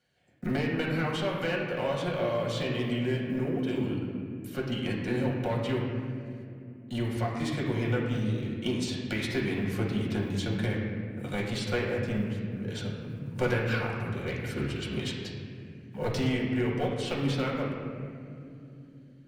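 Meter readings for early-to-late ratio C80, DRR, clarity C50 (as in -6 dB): 3.5 dB, -4.0 dB, 1.5 dB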